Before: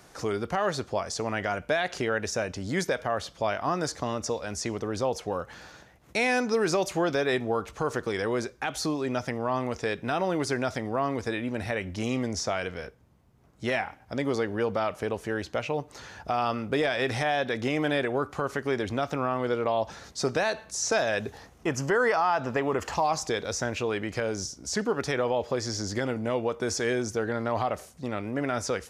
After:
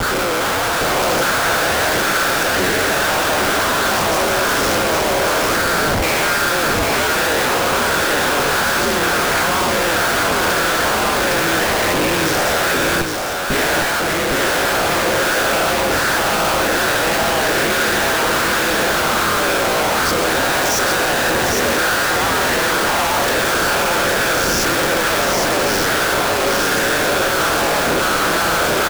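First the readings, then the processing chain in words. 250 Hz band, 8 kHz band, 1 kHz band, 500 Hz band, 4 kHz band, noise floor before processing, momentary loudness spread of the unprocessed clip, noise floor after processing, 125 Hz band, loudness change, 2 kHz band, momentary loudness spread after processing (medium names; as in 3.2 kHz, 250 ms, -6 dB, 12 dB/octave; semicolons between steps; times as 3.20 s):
+8.0 dB, +16.5 dB, +14.0 dB, +9.5 dB, +18.5 dB, -55 dBFS, 6 LU, -18 dBFS, +7.5 dB, +13.5 dB, +17.0 dB, 1 LU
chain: every event in the spectrogram widened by 240 ms; high-pass 150 Hz 6 dB/octave; peaking EQ 1.5 kHz +12.5 dB 0.3 oct; peak limiter -10 dBFS, peak gain reduction 8 dB; waveshaping leveller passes 5; ring modulator 85 Hz; overdrive pedal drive 14 dB, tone 1.1 kHz, clips at -10 dBFS; Schmitt trigger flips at -32 dBFS; delay 807 ms -3.5 dB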